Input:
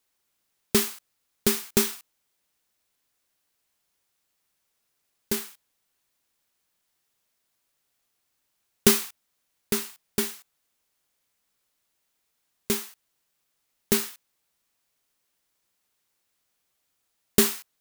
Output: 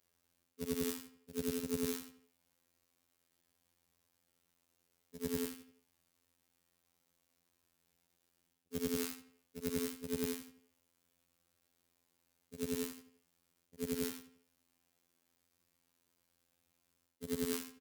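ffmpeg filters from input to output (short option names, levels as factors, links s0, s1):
-filter_complex "[0:a]afftfilt=real='re':imag='-im':win_size=8192:overlap=0.75,highpass=47,lowshelf=f=410:g=11.5,areverse,acompressor=threshold=0.0224:ratio=6,areverse,asetrate=48091,aresample=44100,atempo=0.917004,alimiter=level_in=1.19:limit=0.0631:level=0:latency=1:release=206,volume=0.841,afftfilt=real='hypot(re,im)*cos(PI*b)':imag='0':win_size=2048:overlap=0.75,asplit=2[s0][s1];[s1]adelay=85,lowpass=f=3900:p=1,volume=0.211,asplit=2[s2][s3];[s3]adelay=85,lowpass=f=3900:p=1,volume=0.46,asplit=2[s4][s5];[s5]adelay=85,lowpass=f=3900:p=1,volume=0.46,asplit=2[s6][s7];[s7]adelay=85,lowpass=f=3900:p=1,volume=0.46[s8];[s2][s4][s6][s8]amix=inputs=4:normalize=0[s9];[s0][s9]amix=inputs=2:normalize=0,volume=1.68"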